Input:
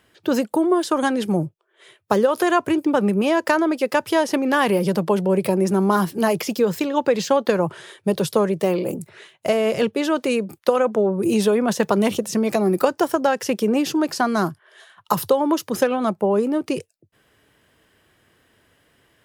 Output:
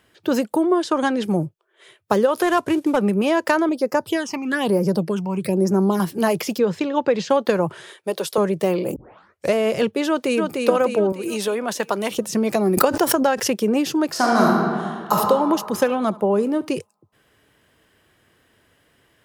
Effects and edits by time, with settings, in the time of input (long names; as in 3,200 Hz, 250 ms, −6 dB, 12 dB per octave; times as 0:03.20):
0:00.63–0:01.24: low-pass filter 7,100 Hz
0:02.43–0:02.97: variable-slope delta modulation 64 kbit/s
0:03.69–0:06.00: all-pass phaser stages 8, 1.1 Hz, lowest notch 460–3,400 Hz
0:06.58–0:07.30: high-frequency loss of the air 87 metres
0:07.93–0:08.38: high-pass filter 410 Hz
0:08.96: tape start 0.58 s
0:10.07–0:10.59: delay throw 300 ms, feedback 55%, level −3.5 dB
0:11.12–0:12.18: high-pass filter 630 Hz 6 dB per octave
0:12.77–0:13.50: background raised ahead of every attack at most 73 dB per second
0:14.10–0:15.14: thrown reverb, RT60 2 s, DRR −3.5 dB
0:15.75–0:16.75: repeating echo 71 ms, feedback 33%, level −21 dB